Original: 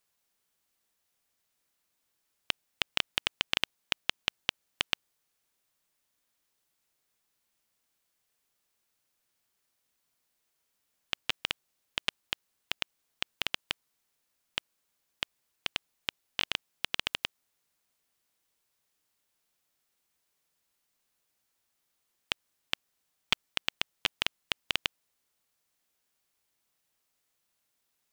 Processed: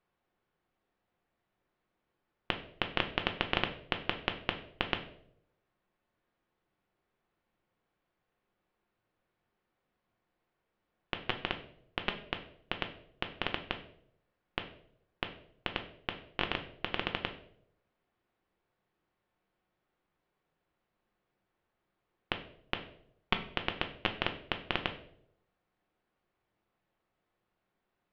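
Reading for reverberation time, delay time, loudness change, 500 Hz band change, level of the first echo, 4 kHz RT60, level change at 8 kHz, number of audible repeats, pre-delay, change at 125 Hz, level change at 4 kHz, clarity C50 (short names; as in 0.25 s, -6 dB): 0.70 s, none, -2.5 dB, +7.5 dB, none, 0.50 s, under -20 dB, none, 3 ms, +8.5 dB, -5.5 dB, 11.5 dB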